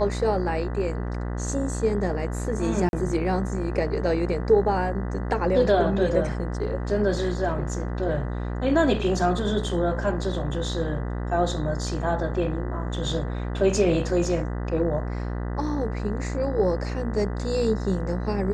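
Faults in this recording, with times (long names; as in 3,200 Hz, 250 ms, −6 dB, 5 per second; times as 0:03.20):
mains buzz 60 Hz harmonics 33 −29 dBFS
0:02.89–0:02.93: drop-out 41 ms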